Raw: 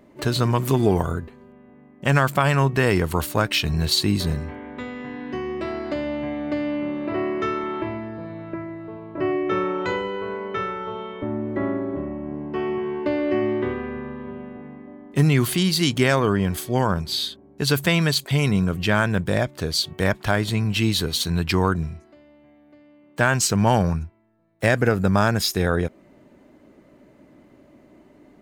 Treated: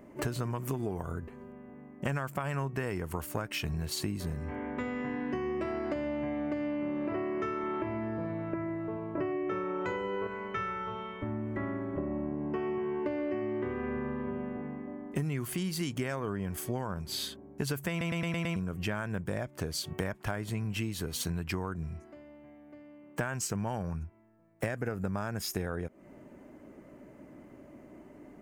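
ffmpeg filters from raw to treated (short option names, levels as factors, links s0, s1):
-filter_complex "[0:a]asettb=1/sr,asplit=3[s0][s1][s2];[s0]atrim=end=10.274[s3];[s1]atrim=start=10.27:end=11.98,asetpts=PTS-STARTPTS,afade=t=in:d=0.004:c=qsin,afade=t=out:st=1.706:d=0.004:c=qsin,equalizer=f=440:w=0.51:g=-10.5[s4];[s2]atrim=start=11.976[s5];[s3][s4]acrossfade=d=0.004:c1=hsin:c2=qsin[s6];[s6][s5]acrossfade=d=0.004:c1=qsin:c2=hsin,asplit=7[s7][s8][s9][s10][s11][s12][s13];[s7]atrim=end=18.012[s14];[s8]atrim=start=17.898:end=18.012[s15];[s9]atrim=start=17.898:end=18.012[s16];[s10]atrim=start=17.898:end=18.012[s17];[s11]atrim=start=17.898:end=18.012[s18];[s12]atrim=start=17.898:end=18.012[s19];[s13]atrim=start=18.558[s20];[s14][s15]acrossfade=d=0.004:c1=hsin:c2=hsin[s21];[s21][s16]acrossfade=d=0.004:c1=hsin:c2=hsin[s22];[s22][s17]acrossfade=d=0.004:c1=hsin:c2=hsin[s23];[s23][s18]acrossfade=d=0.004:c1=hsin:c2=hsin[s24];[s24][s19]acrossfade=d=0.004:c1=hsin:c2=hsin[s25];[s25][s20]acrossfade=d=0.004:c1=hsin:c2=hsin,equalizer=f=3900:w=2.1:g=-11.5,acompressor=threshold=0.0316:ratio=12"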